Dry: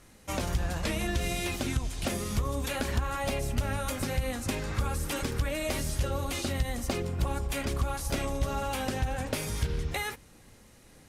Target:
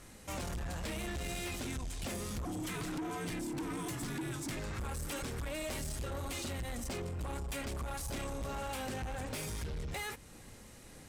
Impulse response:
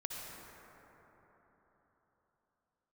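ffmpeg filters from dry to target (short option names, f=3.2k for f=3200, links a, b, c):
-filter_complex "[0:a]asettb=1/sr,asplit=3[a][b][c];[a]atrim=end=2.454[d];[b]atrim=start=2.45:end=4.57,asetpts=PTS-STARTPTS,afade=t=in:d=0.004:c=qsin,afade=t=out:st=2.116:d=0.004:c=qsin,afreqshift=-380[e];[c]atrim=start=4.566[f];[d][e]acrossfade=d=0.004:c1=hsin:c2=qsin[g];[g][f]acrossfade=d=0.004:c1=qsin:c2=hsin,asoftclip=type=tanh:threshold=-32.5dB,alimiter=level_in=13.5dB:limit=-24dB:level=0:latency=1:release=209,volume=-13.5dB,equalizer=f=7.9k:t=o:w=0.21:g=4,volume=2dB"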